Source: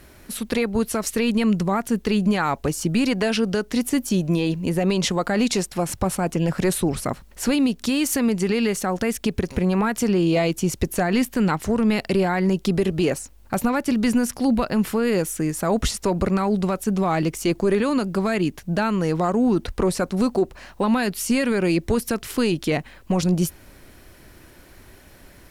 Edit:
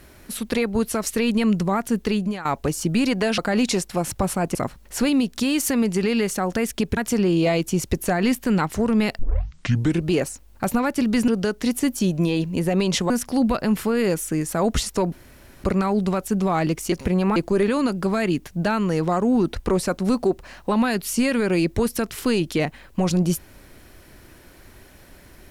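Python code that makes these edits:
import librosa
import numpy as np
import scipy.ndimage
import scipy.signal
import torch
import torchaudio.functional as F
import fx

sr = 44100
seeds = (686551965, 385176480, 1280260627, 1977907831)

y = fx.edit(x, sr, fx.fade_out_to(start_s=2.06, length_s=0.39, floor_db=-15.0),
    fx.move(start_s=3.38, length_s=1.82, to_s=14.18),
    fx.cut(start_s=6.37, length_s=0.64),
    fx.move(start_s=9.43, length_s=0.44, to_s=17.48),
    fx.tape_start(start_s=12.09, length_s=0.88),
    fx.insert_room_tone(at_s=16.2, length_s=0.52), tone=tone)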